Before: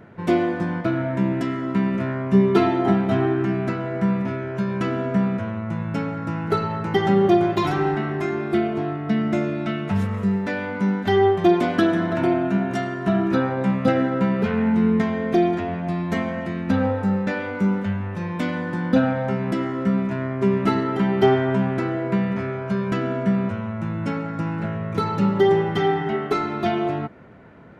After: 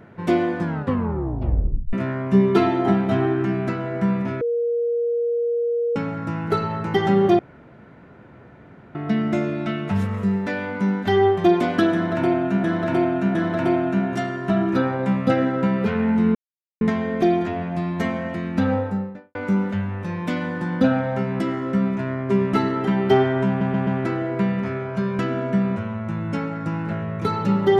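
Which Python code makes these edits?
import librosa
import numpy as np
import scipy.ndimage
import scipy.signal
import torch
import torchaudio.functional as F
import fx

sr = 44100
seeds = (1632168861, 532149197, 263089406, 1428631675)

y = fx.studio_fade_out(x, sr, start_s=16.83, length_s=0.64)
y = fx.edit(y, sr, fx.tape_stop(start_s=0.61, length_s=1.32),
    fx.bleep(start_s=4.41, length_s=1.55, hz=472.0, db=-19.0),
    fx.room_tone_fill(start_s=7.39, length_s=1.56),
    fx.repeat(start_s=11.93, length_s=0.71, count=3),
    fx.insert_silence(at_s=14.93, length_s=0.46),
    fx.stutter(start_s=21.6, slice_s=0.13, count=4), tone=tone)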